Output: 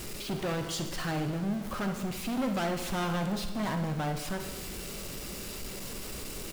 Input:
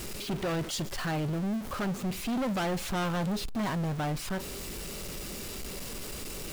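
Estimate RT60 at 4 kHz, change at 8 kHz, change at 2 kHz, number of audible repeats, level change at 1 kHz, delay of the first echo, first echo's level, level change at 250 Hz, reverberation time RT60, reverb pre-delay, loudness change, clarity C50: 1.4 s, -0.5 dB, -0.5 dB, 1, -0.5 dB, 65 ms, -12.5 dB, -0.5 dB, 1.5 s, 5 ms, -0.5 dB, 7.0 dB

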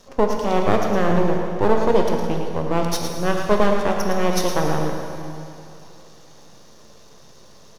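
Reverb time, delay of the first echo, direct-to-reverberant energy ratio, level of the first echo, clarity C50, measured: 2.7 s, 0.11 s, 1.0 dB, -7.5 dB, 2.0 dB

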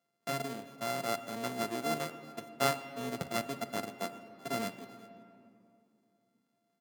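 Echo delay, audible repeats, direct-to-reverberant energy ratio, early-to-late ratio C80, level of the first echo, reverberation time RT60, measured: 0.382 s, 1, 10.5 dB, 12.5 dB, -22.5 dB, 2.6 s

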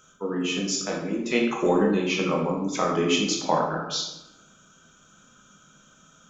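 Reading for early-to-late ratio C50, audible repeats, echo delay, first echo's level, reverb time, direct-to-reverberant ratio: 3.0 dB, none, none, none, 1.0 s, -2.0 dB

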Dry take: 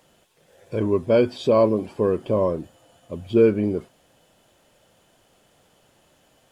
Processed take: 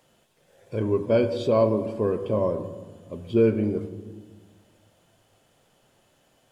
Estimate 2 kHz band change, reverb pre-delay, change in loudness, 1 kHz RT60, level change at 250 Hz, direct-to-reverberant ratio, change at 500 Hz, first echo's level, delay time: -3.5 dB, 7 ms, -3.0 dB, 1.3 s, -2.5 dB, 9.0 dB, -3.0 dB, none, none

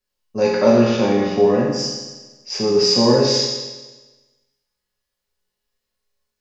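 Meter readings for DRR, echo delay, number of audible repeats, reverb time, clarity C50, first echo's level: -6.0 dB, none, none, 1.2 s, 1.0 dB, none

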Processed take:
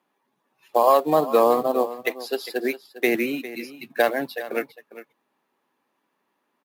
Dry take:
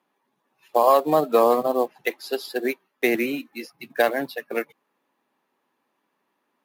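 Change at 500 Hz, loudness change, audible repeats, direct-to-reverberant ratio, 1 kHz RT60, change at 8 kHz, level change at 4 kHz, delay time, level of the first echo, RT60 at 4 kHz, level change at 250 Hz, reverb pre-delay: 0.0 dB, 0.0 dB, 1, none, none, 0.0 dB, 0.0 dB, 0.404 s, -15.0 dB, none, 0.0 dB, none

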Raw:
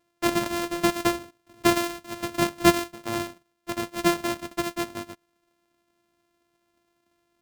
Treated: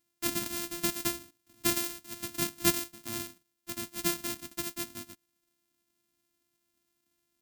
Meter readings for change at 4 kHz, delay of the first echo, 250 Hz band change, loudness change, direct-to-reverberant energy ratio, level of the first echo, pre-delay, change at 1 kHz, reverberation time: -4.5 dB, none, -11.5 dB, -6.0 dB, none, none, none, -14.5 dB, none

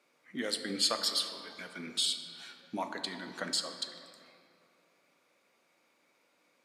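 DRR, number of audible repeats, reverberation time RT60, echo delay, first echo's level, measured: 6.0 dB, none, 2.6 s, none, none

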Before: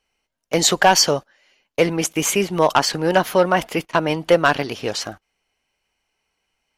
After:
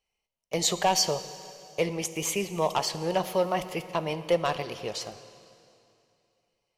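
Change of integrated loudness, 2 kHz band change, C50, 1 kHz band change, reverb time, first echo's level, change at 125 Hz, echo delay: -10.0 dB, -14.5 dB, 12.5 dB, -10.0 dB, 2.7 s, none, -9.0 dB, none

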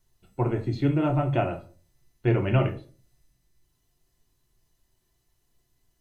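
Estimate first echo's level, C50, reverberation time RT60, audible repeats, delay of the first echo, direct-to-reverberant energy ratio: none, 12.5 dB, 0.40 s, none, none, 3.0 dB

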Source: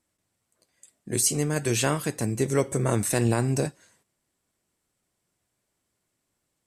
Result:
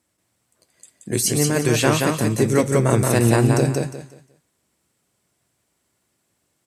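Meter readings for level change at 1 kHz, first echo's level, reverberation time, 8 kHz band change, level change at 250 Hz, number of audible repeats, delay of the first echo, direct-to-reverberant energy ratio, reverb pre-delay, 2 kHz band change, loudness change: +8.0 dB, -3.0 dB, none, +3.5 dB, +8.0 dB, 3, 0.178 s, none, none, +7.5 dB, +6.5 dB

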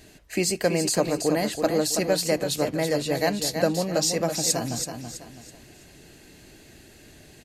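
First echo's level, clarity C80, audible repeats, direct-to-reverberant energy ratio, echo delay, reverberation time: -7.0 dB, none, 3, none, 0.328 s, none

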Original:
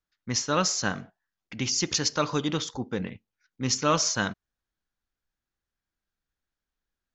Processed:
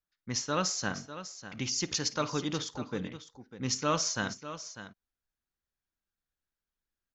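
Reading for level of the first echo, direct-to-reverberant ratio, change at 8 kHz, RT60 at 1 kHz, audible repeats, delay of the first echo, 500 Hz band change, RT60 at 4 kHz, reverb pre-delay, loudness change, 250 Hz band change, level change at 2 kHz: -20.0 dB, none, -5.0 dB, none, 2, 54 ms, -5.0 dB, none, none, -6.0 dB, -5.0 dB, -5.0 dB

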